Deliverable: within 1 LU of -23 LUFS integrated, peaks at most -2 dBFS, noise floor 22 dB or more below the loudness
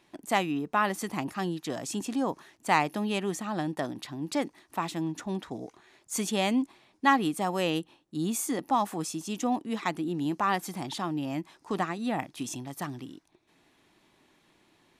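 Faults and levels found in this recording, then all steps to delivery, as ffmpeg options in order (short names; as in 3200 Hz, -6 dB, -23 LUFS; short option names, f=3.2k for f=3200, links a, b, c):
loudness -30.5 LUFS; peak -8.0 dBFS; loudness target -23.0 LUFS
-> -af "volume=7.5dB,alimiter=limit=-2dB:level=0:latency=1"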